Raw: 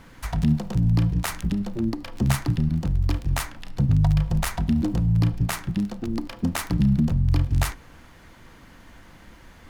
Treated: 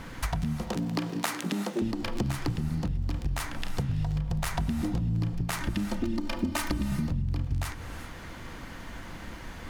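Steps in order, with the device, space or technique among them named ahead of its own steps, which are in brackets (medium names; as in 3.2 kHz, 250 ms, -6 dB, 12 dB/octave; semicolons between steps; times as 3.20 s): 0.62–1.82 s: high-pass 250 Hz 24 dB/octave; 5.60–6.92 s: comb 3.3 ms, depth 96%; treble shelf 11 kHz -3.5 dB; serial compression, leveller first (compression, threshold -24 dBFS, peak gain reduction 9.5 dB; compression, threshold -33 dBFS, peak gain reduction 10.5 dB); gated-style reverb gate 410 ms rising, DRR 10 dB; trim +6.5 dB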